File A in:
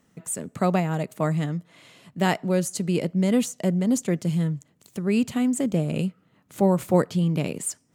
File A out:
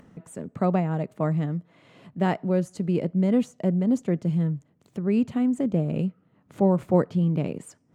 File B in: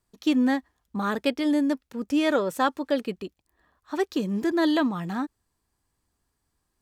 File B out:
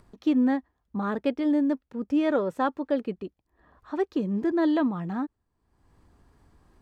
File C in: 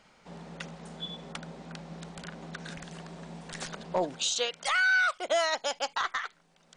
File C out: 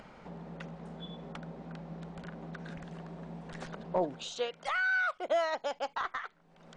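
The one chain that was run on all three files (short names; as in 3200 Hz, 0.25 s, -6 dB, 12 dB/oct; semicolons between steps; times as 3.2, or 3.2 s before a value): LPF 1000 Hz 6 dB/oct; upward compressor, threshold -42 dBFS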